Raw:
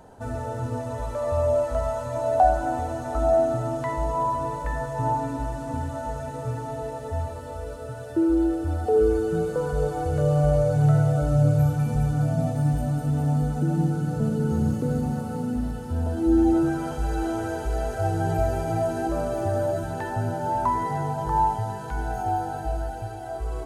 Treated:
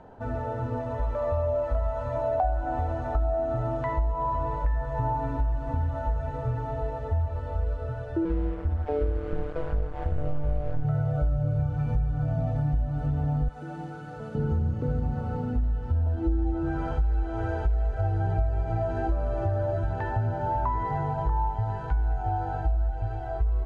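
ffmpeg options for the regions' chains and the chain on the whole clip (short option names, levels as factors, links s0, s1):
-filter_complex "[0:a]asettb=1/sr,asplit=3[s0][s1][s2];[s0]atrim=end=8.254[s3];[s1]atrim=start=8.25:end=10.85,asetpts=PTS-STARTPTS,afade=t=in:d=0.004:c=qsin,afade=t=out:st=2.596:d=0.004:c=qsin,tremolo=f=150:d=0.75,aeval=exprs='sgn(val(0))*max(abs(val(0))-0.0112,0)':c=same[s4];[s2]atrim=start=10.846[s5];[s3][s4]acrossfade=d=0.004:c1=hsin:c2=qsin[s6];[s6][s5]acrossfade=d=0.004:c1=qsin:c2=hsin,asettb=1/sr,asplit=3[s7][s8][s9];[s7]atrim=end=13.484[s10];[s8]atrim=start=13.48:end=14.35,asetpts=PTS-STARTPTS,afade=t=in:d=0.004:c=qsin,afade=t=out:st=0.866:d=0.004:c=qsin,highpass=f=950:p=1,highshelf=f=10000:g=10[s11];[s9]atrim=start=14.346[s12];[s10][s11]acrossfade=d=0.004:c1=hsin:c2=qsin[s13];[s13][s12]acrossfade=d=0.004:c1=qsin:c2=hsin,lowpass=2600,asubboost=boost=9.5:cutoff=63,acompressor=threshold=0.0708:ratio=5"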